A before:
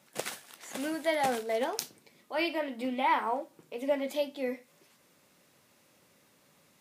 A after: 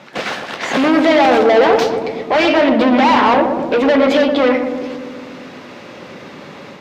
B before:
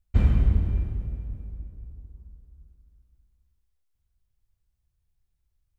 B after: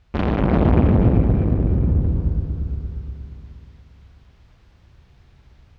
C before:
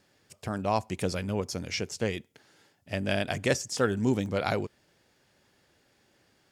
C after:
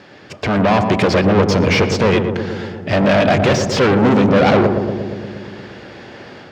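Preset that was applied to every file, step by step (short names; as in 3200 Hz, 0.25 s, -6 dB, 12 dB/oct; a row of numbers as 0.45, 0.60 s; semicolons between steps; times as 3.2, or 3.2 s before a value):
in parallel at +1.5 dB: compressor, threshold -35 dBFS; on the sum: tube stage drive 30 dB, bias 0.2; hard clip -35.5 dBFS; AGC gain up to 5.5 dB; HPF 190 Hz 6 dB/oct; air absorption 220 m; on a send: darkening echo 0.117 s, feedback 78%, low-pass 940 Hz, level -5 dB; on the sum: normalise peaks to -2 dBFS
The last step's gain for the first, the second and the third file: +20.5, +22.0, +20.0 dB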